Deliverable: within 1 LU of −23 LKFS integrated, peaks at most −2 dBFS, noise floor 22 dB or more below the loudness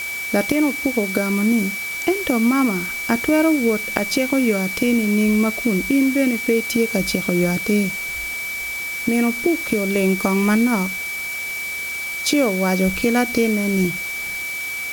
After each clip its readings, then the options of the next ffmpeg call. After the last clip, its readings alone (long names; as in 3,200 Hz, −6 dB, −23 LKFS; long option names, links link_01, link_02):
interfering tone 2,300 Hz; level of the tone −25 dBFS; background noise floor −27 dBFS; target noise floor −42 dBFS; integrated loudness −19.5 LKFS; sample peak −2.0 dBFS; target loudness −23.0 LKFS
→ -af "bandreject=frequency=2300:width=30"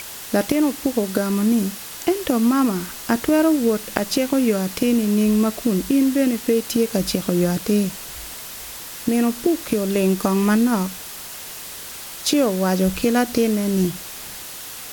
interfering tone none found; background noise floor −35 dBFS; target noise floor −42 dBFS
→ -af "afftdn=noise_reduction=7:noise_floor=-35"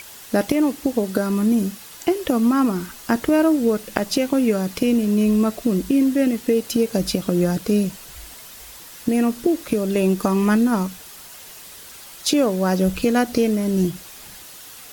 background noise floor −41 dBFS; target noise floor −43 dBFS
→ -af "afftdn=noise_reduction=6:noise_floor=-41"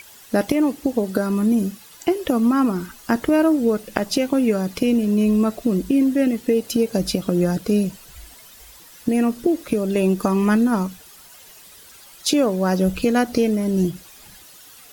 background noise floor −46 dBFS; integrated loudness −20.5 LKFS; sample peak −3.0 dBFS; target loudness −23.0 LKFS
→ -af "volume=-2.5dB"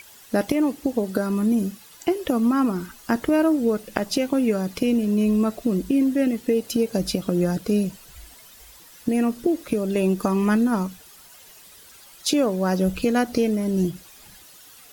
integrated loudness −23.0 LKFS; sample peak −5.5 dBFS; background noise floor −48 dBFS